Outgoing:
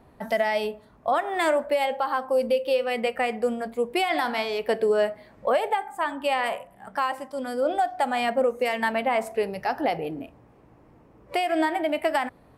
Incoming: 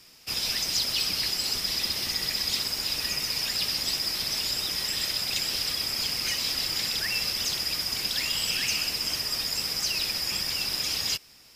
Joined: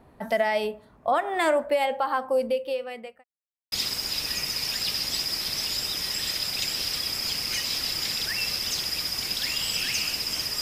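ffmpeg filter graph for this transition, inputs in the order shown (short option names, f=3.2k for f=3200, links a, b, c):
-filter_complex "[0:a]apad=whole_dur=10.61,atrim=end=10.61,asplit=2[a][b];[a]atrim=end=3.24,asetpts=PTS-STARTPTS,afade=t=out:st=2.25:d=0.99[c];[b]atrim=start=3.24:end=3.72,asetpts=PTS-STARTPTS,volume=0[d];[1:a]atrim=start=2.46:end=9.35,asetpts=PTS-STARTPTS,afade=t=in:d=0.004:c=hsin[e];[c][d][e]concat=n=3:v=0:a=1"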